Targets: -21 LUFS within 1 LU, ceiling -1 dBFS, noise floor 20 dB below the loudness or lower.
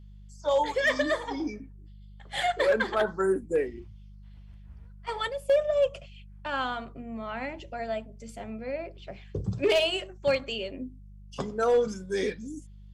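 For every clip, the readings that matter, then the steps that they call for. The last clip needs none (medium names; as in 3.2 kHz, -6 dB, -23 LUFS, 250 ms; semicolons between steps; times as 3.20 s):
clipped samples 0.3%; clipping level -17.0 dBFS; hum 50 Hz; highest harmonic 200 Hz; hum level -45 dBFS; loudness -29.0 LUFS; peak level -17.0 dBFS; loudness target -21.0 LUFS
-> clip repair -17 dBFS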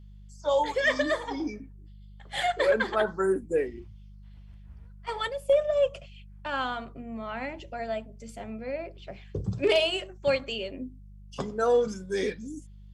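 clipped samples 0.0%; hum 50 Hz; highest harmonic 200 Hz; hum level -45 dBFS
-> de-hum 50 Hz, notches 4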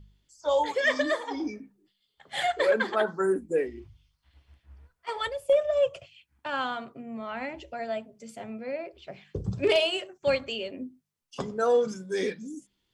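hum not found; loudness -28.5 LUFS; peak level -11.0 dBFS; loudness target -21.0 LUFS
-> trim +7.5 dB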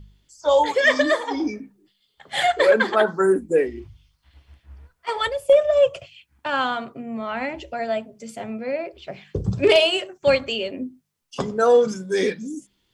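loudness -21.0 LUFS; peak level -3.5 dBFS; noise floor -70 dBFS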